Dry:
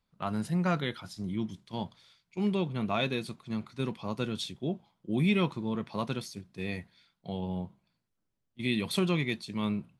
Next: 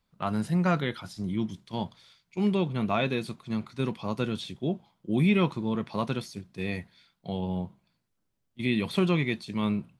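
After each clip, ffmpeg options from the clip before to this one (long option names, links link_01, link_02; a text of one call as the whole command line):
ffmpeg -i in.wav -filter_complex "[0:a]acrossover=split=3000[link_01][link_02];[link_02]acompressor=threshold=-45dB:ratio=4:attack=1:release=60[link_03];[link_01][link_03]amix=inputs=2:normalize=0,volume=3.5dB" out.wav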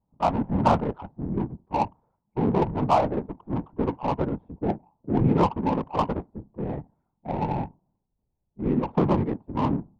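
ffmpeg -i in.wav -af "afftfilt=real='hypot(re,im)*cos(2*PI*random(0))':imag='hypot(re,im)*sin(2*PI*random(1))':win_size=512:overlap=0.75,lowpass=frequency=890:width_type=q:width=4.9,adynamicsmooth=sensitivity=4:basefreq=580,volume=7.5dB" out.wav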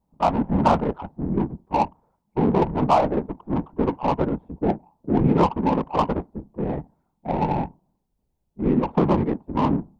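ffmpeg -i in.wav -filter_complex "[0:a]equalizer=frequency=110:width_type=o:width=0.36:gain=-9.5,asplit=2[link_01][link_02];[link_02]alimiter=limit=-17dB:level=0:latency=1:release=237,volume=-2dB[link_03];[link_01][link_03]amix=inputs=2:normalize=0" out.wav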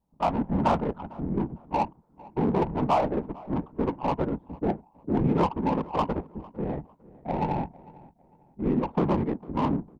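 ffmpeg -i in.wav -filter_complex "[0:a]asplit=2[link_01][link_02];[link_02]asoftclip=type=hard:threshold=-16.5dB,volume=-7.5dB[link_03];[link_01][link_03]amix=inputs=2:normalize=0,asplit=2[link_04][link_05];[link_05]adelay=452,lowpass=frequency=1900:poles=1,volume=-21dB,asplit=2[link_06][link_07];[link_07]adelay=452,lowpass=frequency=1900:poles=1,volume=0.33[link_08];[link_04][link_06][link_08]amix=inputs=3:normalize=0,volume=-7.5dB" out.wav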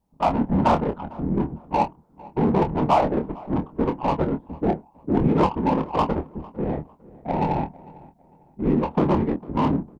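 ffmpeg -i in.wav -filter_complex "[0:a]asplit=2[link_01][link_02];[link_02]adelay=26,volume=-8dB[link_03];[link_01][link_03]amix=inputs=2:normalize=0,volume=4dB" out.wav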